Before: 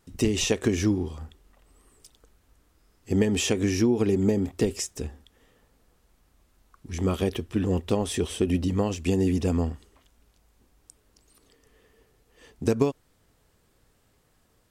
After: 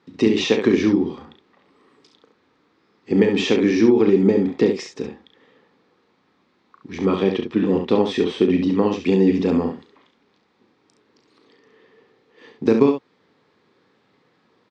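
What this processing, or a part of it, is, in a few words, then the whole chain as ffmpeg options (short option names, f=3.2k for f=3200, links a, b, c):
kitchen radio: -af "highpass=120,highpass=200,equalizer=f=650:t=q:w=4:g=-9,equalizer=f=1.5k:t=q:w=4:g=-4,equalizer=f=2.9k:t=q:w=4:g=-7,lowpass=f=4k:w=0.5412,lowpass=f=4k:w=1.3066,aecho=1:1:36|68:0.376|0.473,volume=8.5dB"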